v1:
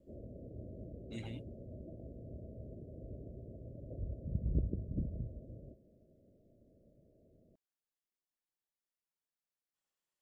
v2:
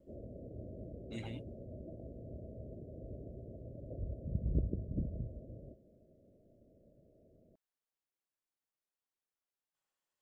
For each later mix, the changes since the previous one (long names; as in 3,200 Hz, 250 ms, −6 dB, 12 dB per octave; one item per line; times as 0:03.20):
master: add parametric band 1,000 Hz +4 dB 2.3 octaves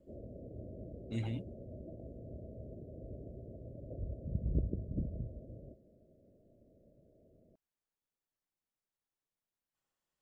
speech: add low-shelf EQ 270 Hz +10.5 dB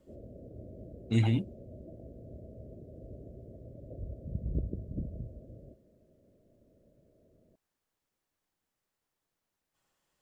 speech +11.5 dB